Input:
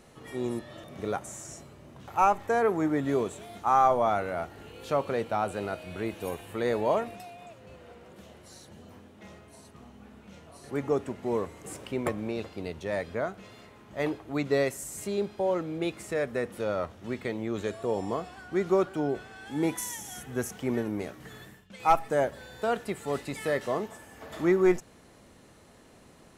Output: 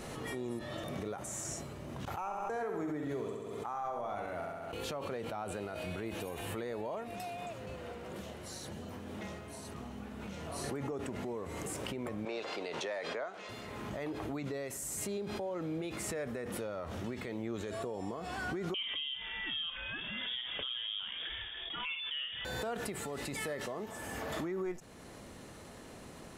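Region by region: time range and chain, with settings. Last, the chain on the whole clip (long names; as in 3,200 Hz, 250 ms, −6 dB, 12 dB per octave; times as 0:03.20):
0:02.05–0:04.73: noise gate −37 dBFS, range −21 dB + flutter between parallel walls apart 11.4 metres, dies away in 0.69 s
0:12.25–0:13.49: high-pass filter 120 Hz 24 dB per octave + three-way crossover with the lows and the highs turned down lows −19 dB, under 410 Hz, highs −18 dB, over 7,700 Hz
0:18.74–0:22.45: double-tracking delay 49 ms −11 dB + voice inversion scrambler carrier 3,500 Hz
whole clip: downward compressor 6 to 1, threshold −39 dBFS; brickwall limiter −34.5 dBFS; background raised ahead of every attack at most 20 dB per second; level +4.5 dB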